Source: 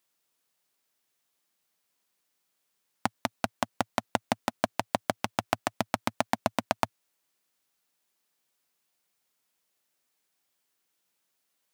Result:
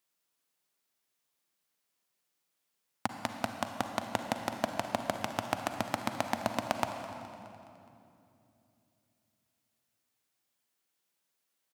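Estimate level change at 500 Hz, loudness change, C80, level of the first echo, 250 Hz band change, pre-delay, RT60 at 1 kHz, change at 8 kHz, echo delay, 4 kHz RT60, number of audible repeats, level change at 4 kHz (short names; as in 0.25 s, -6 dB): -3.0 dB, -3.5 dB, 6.5 dB, -17.0 dB, -3.0 dB, 37 ms, 2.6 s, -3.5 dB, 0.209 s, 2.1 s, 4, -3.5 dB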